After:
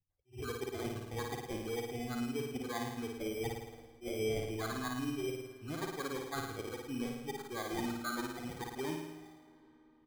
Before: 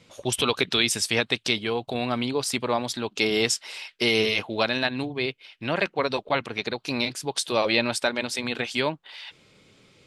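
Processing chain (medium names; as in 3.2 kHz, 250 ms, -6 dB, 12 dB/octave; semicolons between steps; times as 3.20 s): expander on every frequency bin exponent 2; low-pass 2 kHz 24 dB/octave; peaking EQ 720 Hz -14.5 dB 2.4 oct; comb 2.6 ms, depth 69%; reverse; compression, threshold -47 dBFS, peak gain reduction 17 dB; reverse; sample-and-hold 16×; on a send: flutter echo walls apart 9.4 m, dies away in 0.94 s; on the sum: algorithmic reverb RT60 4.5 s, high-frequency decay 0.75×, pre-delay 45 ms, DRR 18 dB; attacks held to a fixed rise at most 280 dB/s; trim +9 dB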